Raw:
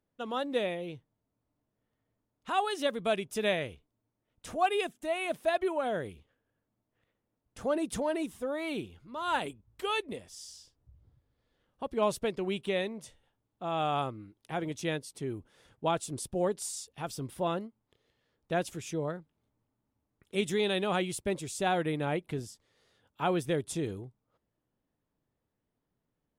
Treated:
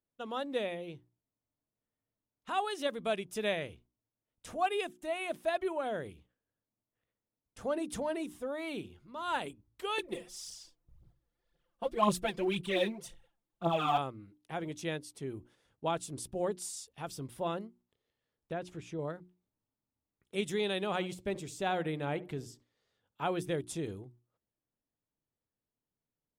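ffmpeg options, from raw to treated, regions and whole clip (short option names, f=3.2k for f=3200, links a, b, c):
-filter_complex "[0:a]asettb=1/sr,asplit=3[a][b][c];[a]atrim=end=9.984[d];[b]atrim=start=9.98:end=13.98,asetpts=PTS-STARTPTS,afade=t=in:d=0.004:c=qsin,afade=t=out:st=3.996:d=0.004:c=qsin,aecho=1:1:5.8:0.96,atrim=end_sample=176400,aphaser=in_gain=1:out_gain=1:delay=4.6:decay=0.65:speed=1.9:type=triangular[e];[c]atrim=start=13.976[f];[d][e]acrossfade=d=0.004:c1=hsin:c2=qsin[g];[g][f]acrossfade=d=0.004:c1=qsin:c2=hsin,asettb=1/sr,asplit=3[h][i][j];[h]atrim=end=18.524[k];[i]atrim=start=18.52:end=18.99,asetpts=PTS-STARTPTS,afade=t=in:d=0.004:c=qsin,afade=t=out:st=0.466:d=0.004:c=qsin,aemphasis=mode=reproduction:type=75fm,acompressor=threshold=-32dB:ratio=2:attack=3.2:release=140:knee=1:detection=peak[l];[j]atrim=start=18.986[m];[k][l]acrossfade=d=0.004:c1=hsin:c2=qsin[n];[n][m]acrossfade=d=0.004:c1=qsin:c2=hsin,asettb=1/sr,asplit=3[o][p][q];[o]atrim=end=20.864[r];[p]atrim=start=20.86:end=23.22,asetpts=PTS-STARTPTS,afade=t=in:d=0.004:c=qsin,afade=t=out:st=2.356:d=0.004:c=qsin,deesser=0.85,equalizer=f=10k:t=o:w=0.21:g=-8,asplit=2[s][t];[t]adelay=70,lowpass=f=930:p=1,volume=-15.5dB,asplit=2[u][v];[v]adelay=70,lowpass=f=930:p=1,volume=0.33,asplit=2[w][x];[x]adelay=70,lowpass=f=930:p=1,volume=0.33[y];[s][u][w][y]amix=inputs=4:normalize=0,atrim=end_sample=104076[z];[q]atrim=start=23.216[aa];[r][z]acrossfade=d=0.004:c1=hsin:c2=qsin[ab];[ab][aa]acrossfade=d=0.004:c1=qsin:c2=hsin,agate=range=-7dB:threshold=-58dB:ratio=16:detection=peak,bandreject=f=60:t=h:w=6,bandreject=f=120:t=h:w=6,bandreject=f=180:t=h:w=6,bandreject=f=240:t=h:w=6,bandreject=f=300:t=h:w=6,bandreject=f=360:t=h:w=6,volume=-3.5dB"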